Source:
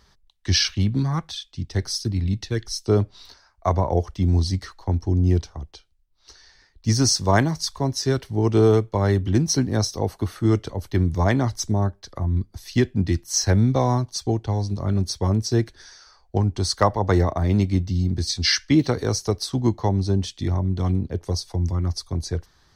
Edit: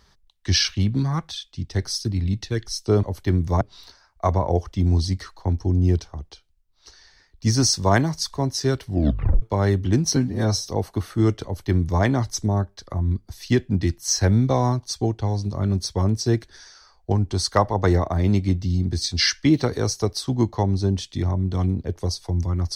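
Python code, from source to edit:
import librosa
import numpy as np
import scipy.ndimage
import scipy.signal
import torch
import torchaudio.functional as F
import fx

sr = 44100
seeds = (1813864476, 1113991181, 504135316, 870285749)

y = fx.edit(x, sr, fx.tape_stop(start_s=8.3, length_s=0.54),
    fx.stretch_span(start_s=9.58, length_s=0.33, factor=1.5),
    fx.duplicate(start_s=10.7, length_s=0.58, to_s=3.03), tone=tone)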